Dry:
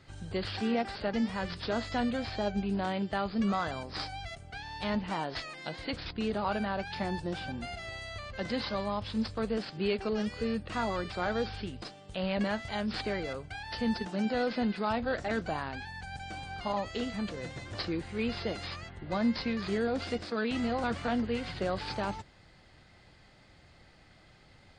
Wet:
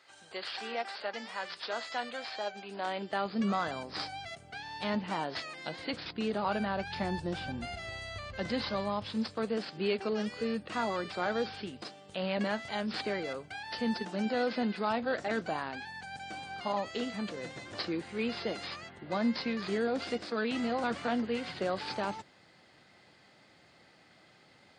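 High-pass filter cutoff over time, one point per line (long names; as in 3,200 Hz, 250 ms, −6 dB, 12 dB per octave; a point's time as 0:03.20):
0:02.61 660 Hz
0:03.45 160 Hz
0:06.37 160 Hz
0:06.97 47 Hz
0:08.47 47 Hz
0:09.24 190 Hz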